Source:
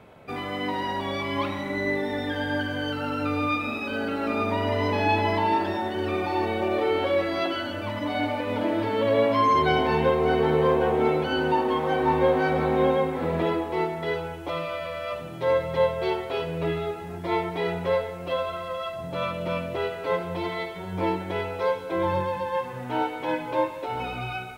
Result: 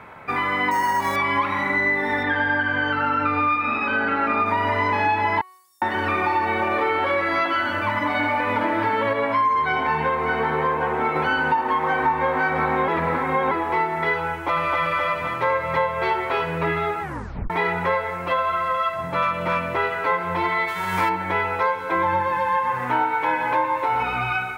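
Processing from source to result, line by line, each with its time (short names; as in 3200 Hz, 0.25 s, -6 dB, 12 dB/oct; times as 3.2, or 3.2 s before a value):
0.71–1.16 careless resampling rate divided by 6×, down filtered, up hold
2.23–4.46 LPF 4000 Hz
5.41–5.82 inverse Chebyshev high-pass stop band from 2500 Hz, stop band 60 dB
9.13–11.16 flange 1.2 Hz, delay 6.4 ms, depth 2.7 ms, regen +78%
12.88–13.51 reverse
14.3–14.81 echo throw 0.26 s, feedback 60%, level -2 dB
17.02 tape stop 0.48 s
19.22–19.66 overloaded stage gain 22 dB
20.67–21.08 spectral whitening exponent 0.6
21.82–24.03 lo-fi delay 0.121 s, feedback 35%, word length 9-bit, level -7 dB
whole clip: band shelf 1400 Hz +11.5 dB; de-hum 371 Hz, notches 32; compressor, threshold -21 dBFS; gain +3 dB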